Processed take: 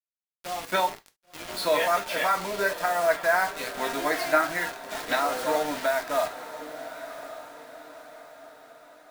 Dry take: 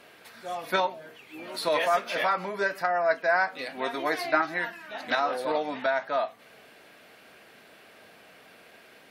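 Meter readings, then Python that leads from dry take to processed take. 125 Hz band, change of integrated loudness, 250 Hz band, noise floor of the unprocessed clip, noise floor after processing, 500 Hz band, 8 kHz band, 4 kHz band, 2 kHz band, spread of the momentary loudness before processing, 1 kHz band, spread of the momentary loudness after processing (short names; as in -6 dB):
+1.5 dB, +1.5 dB, +1.5 dB, -54 dBFS, under -85 dBFS, +1.5 dB, +10.5 dB, +2.5 dB, +0.5 dB, 12 LU, +1.0 dB, 18 LU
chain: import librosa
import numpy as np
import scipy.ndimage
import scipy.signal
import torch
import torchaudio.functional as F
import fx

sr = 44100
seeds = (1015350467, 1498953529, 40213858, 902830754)

p1 = fx.quant_dither(x, sr, seeds[0], bits=6, dither='none')
p2 = p1 + fx.echo_diffused(p1, sr, ms=1064, feedback_pct=45, wet_db=-12.5, dry=0)
y = fx.rev_gated(p2, sr, seeds[1], gate_ms=90, shape='falling', drr_db=7.0)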